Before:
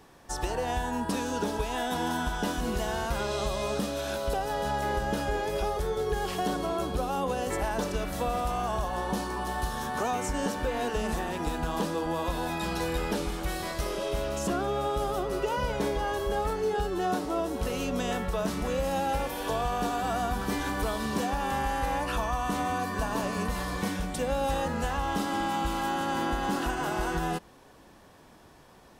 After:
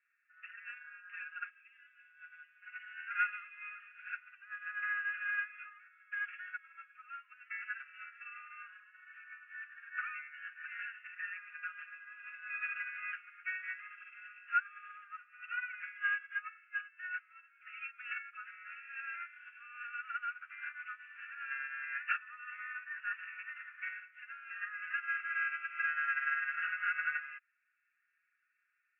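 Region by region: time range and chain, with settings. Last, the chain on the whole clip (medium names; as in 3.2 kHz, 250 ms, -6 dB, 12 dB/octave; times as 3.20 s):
1.50–2.62 s: differentiator + level flattener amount 100%
whole clip: Chebyshev band-pass 1.3–2.7 kHz, order 5; comb 4.9 ms, depth 96%; upward expansion 2.5:1, over -48 dBFS; trim +7 dB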